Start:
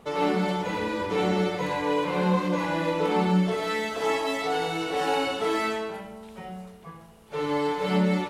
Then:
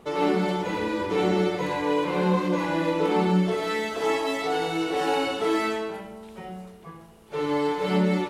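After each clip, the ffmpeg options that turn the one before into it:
-af "equalizer=f=350:w=4.2:g=7"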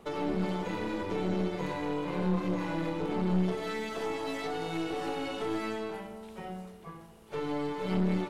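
-filter_complex "[0:a]acrossover=split=270[a][b];[b]acompressor=threshold=-31dB:ratio=6[c];[a][c]amix=inputs=2:normalize=0,aeval=exprs='(tanh(14.1*val(0)+0.6)-tanh(0.6))/14.1':c=same"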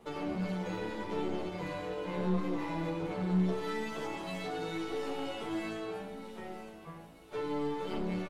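-filter_complex "[0:a]aecho=1:1:953|1906|2859:0.224|0.0784|0.0274,asplit=2[a][b];[b]adelay=10.7,afreqshift=0.76[c];[a][c]amix=inputs=2:normalize=1"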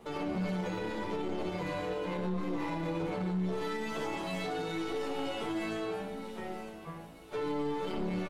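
-af "alimiter=level_in=6dB:limit=-24dB:level=0:latency=1:release=31,volume=-6dB,volume=3.5dB"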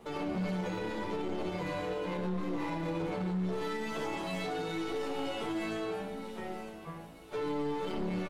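-af "asoftclip=type=hard:threshold=-28.5dB"

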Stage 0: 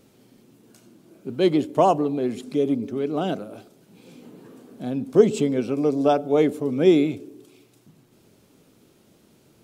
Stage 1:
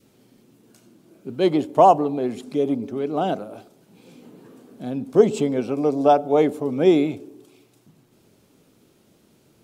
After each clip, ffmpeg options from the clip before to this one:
-af "adynamicequalizer=threshold=0.0158:dfrequency=810:dqfactor=1.4:tfrequency=810:tqfactor=1.4:attack=5:release=100:ratio=0.375:range=4:mode=boostabove:tftype=bell,volume=-1dB"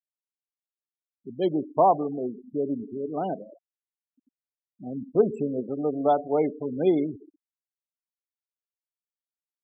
-af "afftfilt=real='re*gte(hypot(re,im),0.0794)':imag='im*gte(hypot(re,im),0.0794)':win_size=1024:overlap=0.75,volume=-6dB"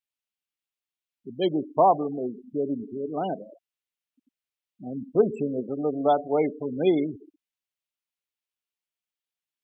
-af "equalizer=f=2.8k:t=o:w=1.1:g=8.5"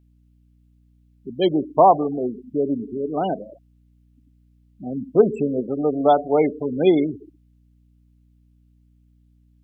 -af "aeval=exprs='val(0)+0.000891*(sin(2*PI*60*n/s)+sin(2*PI*2*60*n/s)/2+sin(2*PI*3*60*n/s)/3+sin(2*PI*4*60*n/s)/4+sin(2*PI*5*60*n/s)/5)':c=same,volume=5.5dB"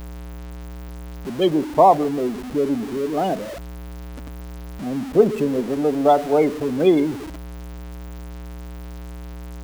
-af "aeval=exprs='val(0)+0.5*0.0376*sgn(val(0))':c=same"

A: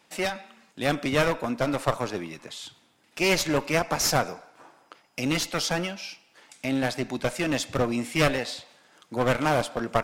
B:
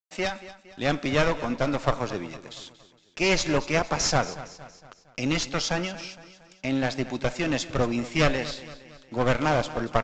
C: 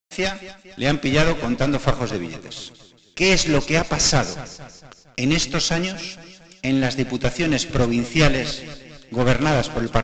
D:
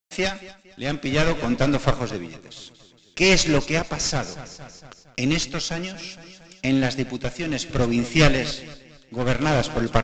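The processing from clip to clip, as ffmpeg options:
-af "lowshelf=f=63:g=9.5,aresample=16000,aeval=exprs='sgn(val(0))*max(abs(val(0))-0.00316,0)':c=same,aresample=44100,aecho=1:1:231|462|693|924:0.158|0.0777|0.0381|0.0186"
-af "equalizer=f=900:t=o:w=1.8:g=-7,volume=8dB"
-af "tremolo=f=0.61:d=0.55"

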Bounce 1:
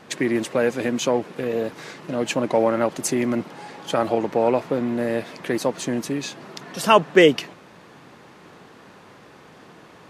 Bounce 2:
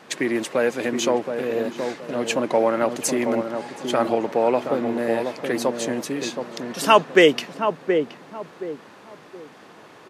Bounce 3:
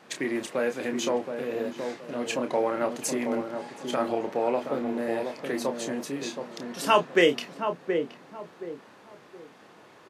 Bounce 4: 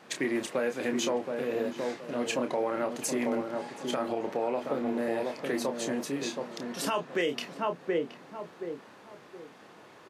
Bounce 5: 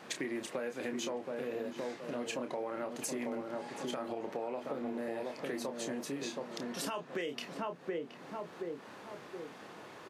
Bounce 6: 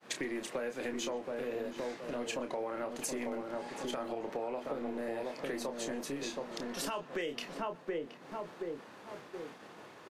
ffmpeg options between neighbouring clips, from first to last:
-filter_complex "[0:a]highpass=f=280:p=1,asplit=2[a][b];[b]adelay=723,lowpass=f=810:p=1,volume=-5dB,asplit=2[c][d];[d]adelay=723,lowpass=f=810:p=1,volume=0.34,asplit=2[e][f];[f]adelay=723,lowpass=f=810:p=1,volume=0.34,asplit=2[g][h];[h]adelay=723,lowpass=f=810:p=1,volume=0.34[i];[c][e][g][i]amix=inputs=4:normalize=0[j];[a][j]amix=inputs=2:normalize=0,volume=1dB"
-filter_complex "[0:a]asplit=2[a][b];[b]adelay=29,volume=-7dB[c];[a][c]amix=inputs=2:normalize=0,volume=-7dB"
-af "alimiter=limit=-19.5dB:level=0:latency=1:release=173"
-af "acompressor=threshold=-41dB:ratio=3,volume=2.5dB"
-filter_complex "[0:a]agate=range=-33dB:threshold=-46dB:ratio=3:detection=peak,acrossover=split=250|7000[a][b][c];[a]aeval=exprs='clip(val(0),-1,0.00126)':c=same[d];[b]aecho=1:1:123:0.0631[e];[d][e][c]amix=inputs=3:normalize=0,volume=1dB"

